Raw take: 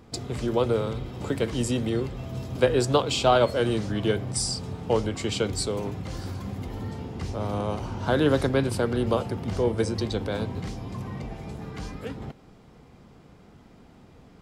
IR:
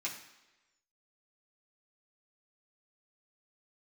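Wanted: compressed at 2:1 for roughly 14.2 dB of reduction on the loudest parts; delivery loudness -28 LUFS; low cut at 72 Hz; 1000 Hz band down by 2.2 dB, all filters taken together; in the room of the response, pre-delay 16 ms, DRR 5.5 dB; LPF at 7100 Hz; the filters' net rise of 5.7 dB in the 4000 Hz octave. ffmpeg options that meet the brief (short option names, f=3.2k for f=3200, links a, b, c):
-filter_complex "[0:a]highpass=72,lowpass=7.1k,equalizer=f=1k:t=o:g=-3.5,equalizer=f=4k:t=o:g=8,acompressor=threshold=-43dB:ratio=2,asplit=2[a][b];[1:a]atrim=start_sample=2205,adelay=16[c];[b][c]afir=irnorm=-1:irlink=0,volume=-7.5dB[d];[a][d]amix=inputs=2:normalize=0,volume=9.5dB"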